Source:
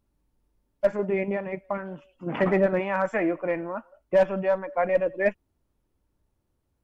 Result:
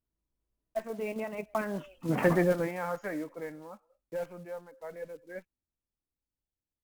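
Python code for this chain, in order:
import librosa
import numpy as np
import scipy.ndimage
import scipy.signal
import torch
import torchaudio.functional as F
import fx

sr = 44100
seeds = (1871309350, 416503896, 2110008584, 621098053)

y = fx.block_float(x, sr, bits=5)
y = fx.doppler_pass(y, sr, speed_mps=32, closest_m=5.6, pass_at_s=1.91)
y = F.gain(torch.from_numpy(y), 5.5).numpy()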